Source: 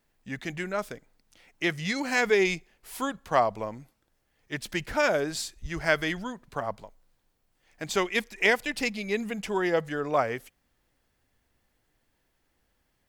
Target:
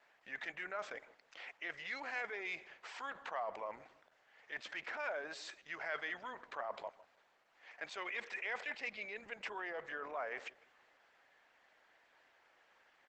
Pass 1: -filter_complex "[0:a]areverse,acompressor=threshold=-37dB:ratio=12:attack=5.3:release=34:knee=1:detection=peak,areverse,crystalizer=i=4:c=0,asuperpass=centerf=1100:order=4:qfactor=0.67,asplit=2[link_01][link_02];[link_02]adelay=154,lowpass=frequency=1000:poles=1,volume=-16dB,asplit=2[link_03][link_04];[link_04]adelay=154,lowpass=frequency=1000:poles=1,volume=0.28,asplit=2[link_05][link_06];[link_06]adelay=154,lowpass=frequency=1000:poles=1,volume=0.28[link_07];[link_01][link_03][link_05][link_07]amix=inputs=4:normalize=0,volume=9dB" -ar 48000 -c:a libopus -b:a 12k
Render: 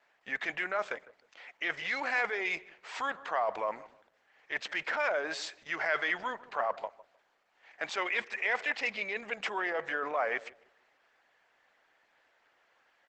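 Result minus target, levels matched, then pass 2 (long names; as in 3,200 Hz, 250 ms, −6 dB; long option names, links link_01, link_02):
downward compressor: peak gain reduction −10 dB
-filter_complex "[0:a]areverse,acompressor=threshold=-48dB:ratio=12:attack=5.3:release=34:knee=1:detection=peak,areverse,crystalizer=i=4:c=0,asuperpass=centerf=1100:order=4:qfactor=0.67,asplit=2[link_01][link_02];[link_02]adelay=154,lowpass=frequency=1000:poles=1,volume=-16dB,asplit=2[link_03][link_04];[link_04]adelay=154,lowpass=frequency=1000:poles=1,volume=0.28,asplit=2[link_05][link_06];[link_06]adelay=154,lowpass=frequency=1000:poles=1,volume=0.28[link_07];[link_01][link_03][link_05][link_07]amix=inputs=4:normalize=0,volume=9dB" -ar 48000 -c:a libopus -b:a 12k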